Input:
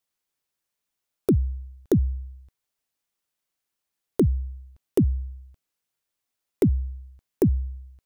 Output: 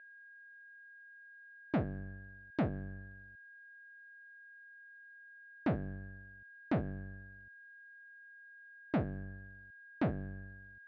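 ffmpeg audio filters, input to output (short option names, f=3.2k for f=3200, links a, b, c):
-af "aeval=exprs='max(val(0),0)':c=same,aeval=exprs='val(0)+0.00126*sin(2*PI*2200*n/s)':c=same,asoftclip=type=tanh:threshold=-27dB,highpass=180,equalizer=f=870:t=q:w=4:g=7,equalizer=f=1.3k:t=q:w=4:g=-6,equalizer=f=4.2k:t=q:w=4:g=-5,lowpass=f=4.7k:w=0.5412,lowpass=f=4.7k:w=1.3066,asetrate=32667,aresample=44100,volume=5dB"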